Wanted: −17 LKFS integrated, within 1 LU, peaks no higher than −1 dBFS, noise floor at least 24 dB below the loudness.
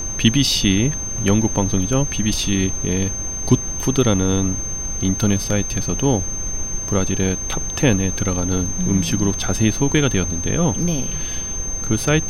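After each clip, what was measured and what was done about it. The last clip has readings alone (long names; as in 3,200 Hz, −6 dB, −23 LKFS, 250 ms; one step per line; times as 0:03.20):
interfering tone 6,300 Hz; level of the tone −25 dBFS; background noise floor −26 dBFS; target noise floor −44 dBFS; integrated loudness −19.5 LKFS; sample peak −1.5 dBFS; target loudness −17.0 LKFS
→ notch filter 6,300 Hz, Q 30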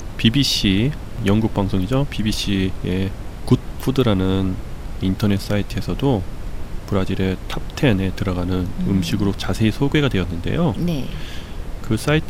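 interfering tone none found; background noise floor −32 dBFS; target noise floor −45 dBFS
→ noise reduction from a noise print 13 dB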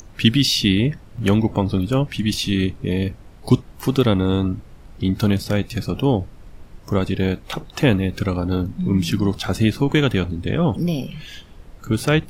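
background noise floor −44 dBFS; target noise floor −45 dBFS
→ noise reduction from a noise print 6 dB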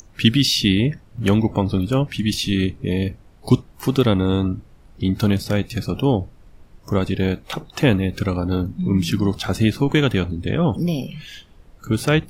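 background noise floor −49 dBFS; integrated loudness −20.5 LKFS; sample peak −1.5 dBFS; target loudness −17.0 LKFS
→ level +3.5 dB
brickwall limiter −1 dBFS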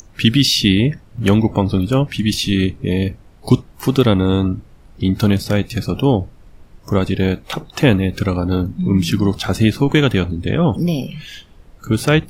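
integrated loudness −17.5 LKFS; sample peak −1.0 dBFS; background noise floor −45 dBFS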